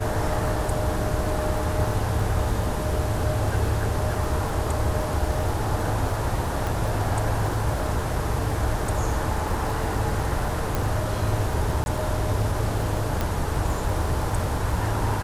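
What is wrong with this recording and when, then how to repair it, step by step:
crackle 42 per s -31 dBFS
6.67 s: pop
10.75 s: pop
11.84–11.86 s: dropout 21 ms
13.21 s: pop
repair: de-click; interpolate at 11.84 s, 21 ms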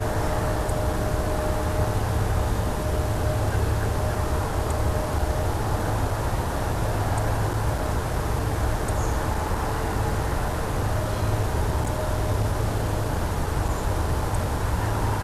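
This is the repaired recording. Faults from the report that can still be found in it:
nothing left

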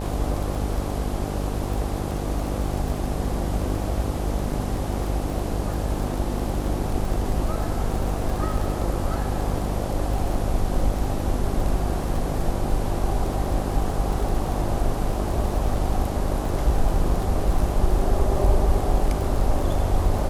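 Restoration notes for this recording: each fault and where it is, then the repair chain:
buzz 50 Hz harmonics 17 -28 dBFS
crackle 21 per s -27 dBFS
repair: de-click; de-hum 50 Hz, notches 17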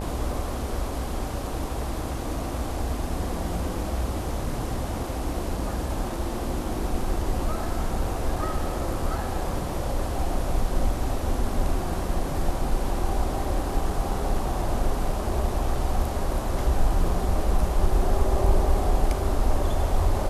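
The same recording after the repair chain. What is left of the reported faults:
nothing left

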